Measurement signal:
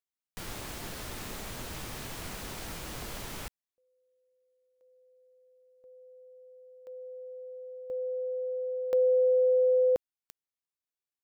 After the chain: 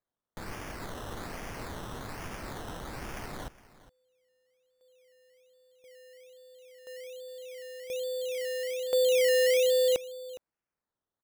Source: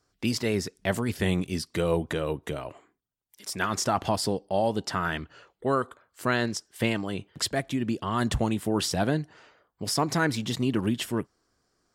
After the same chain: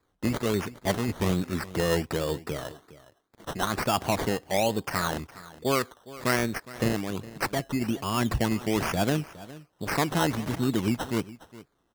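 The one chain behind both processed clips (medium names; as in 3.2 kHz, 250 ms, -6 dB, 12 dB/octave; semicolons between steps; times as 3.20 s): decimation with a swept rate 15×, swing 60% 1.2 Hz; delay 412 ms -18 dB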